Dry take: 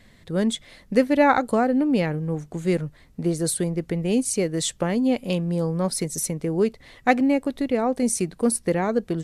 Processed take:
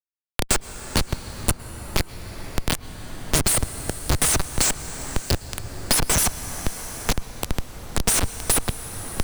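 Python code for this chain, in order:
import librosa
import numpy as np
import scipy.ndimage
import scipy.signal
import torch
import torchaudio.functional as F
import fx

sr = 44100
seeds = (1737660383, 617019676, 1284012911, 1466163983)

y = fx.brickwall_bandstop(x, sr, low_hz=180.0, high_hz=4100.0)
y = fx.riaa(y, sr, side='recording')
y = fx.schmitt(y, sr, flips_db=-26.0)
y = fx.rev_plate(y, sr, seeds[0], rt60_s=4.9, hf_ratio=0.55, predelay_ms=95, drr_db=13.5)
y = fx.band_squash(y, sr, depth_pct=70)
y = y * librosa.db_to_amplitude(7.5)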